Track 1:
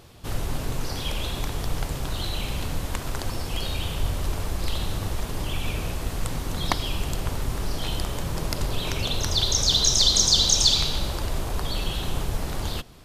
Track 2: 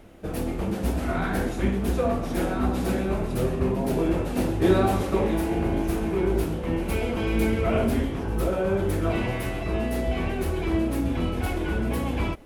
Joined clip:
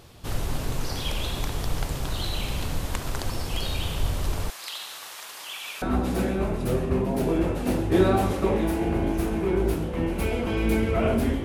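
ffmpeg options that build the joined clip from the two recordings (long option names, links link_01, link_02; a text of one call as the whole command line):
ffmpeg -i cue0.wav -i cue1.wav -filter_complex "[0:a]asettb=1/sr,asplit=3[link_01][link_02][link_03];[link_01]atrim=end=4.504[link_04];[link_02]atrim=start=4.5:end=5.82,asetpts=PTS-STARTPTS,afade=type=in:duration=0.004:curve=qsin,afade=type=out:start_time=1.316:duration=0.004:curve=qsin,highpass=1200[link_05];[link_03]atrim=start=5.816[link_06];[link_04][link_05]acrossfade=duration=0.004:curve1=hsin:curve2=qsin[link_07];[link_07][link_06]acrossfade=duration=0.004:curve1=qsin:curve2=hsin,apad=whole_dur=11.44,atrim=end=11.44,atrim=end=5.822[link_08];[1:a]atrim=start=2.518:end=8.14[link_09];[link_08][link_09]acrossfade=duration=0.004:curve1=hsin:curve2=hsin" out.wav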